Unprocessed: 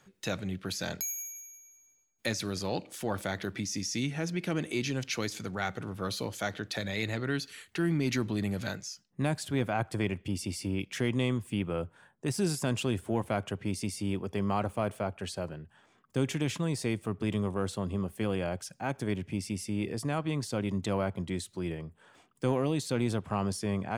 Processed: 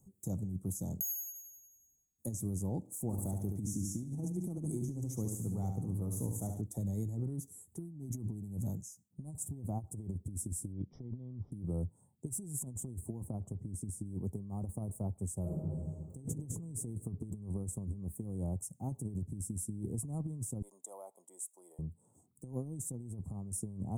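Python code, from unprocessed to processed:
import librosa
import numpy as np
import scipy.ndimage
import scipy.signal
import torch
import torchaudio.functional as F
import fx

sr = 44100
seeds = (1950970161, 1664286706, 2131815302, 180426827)

y = fx.echo_feedback(x, sr, ms=71, feedback_pct=43, wet_db=-6, at=(3.09, 6.6), fade=0.02)
y = fx.resample_bad(y, sr, factor=4, down='none', up='filtered', at=(10.72, 11.52))
y = fx.high_shelf(y, sr, hz=5400.0, db=-8.5, at=(13.27, 14.06))
y = fx.reverb_throw(y, sr, start_s=15.41, length_s=0.76, rt60_s=2.1, drr_db=-5.0)
y = fx.highpass(y, sr, hz=610.0, slope=24, at=(20.62, 21.79))
y = scipy.signal.sosfilt(scipy.signal.ellip(3, 1.0, 40, [810.0, 7900.0], 'bandstop', fs=sr, output='sos'), y)
y = fx.tone_stack(y, sr, knobs='6-0-2')
y = fx.over_compress(y, sr, threshold_db=-52.0, ratio=-0.5)
y = F.gain(torch.from_numpy(y), 15.0).numpy()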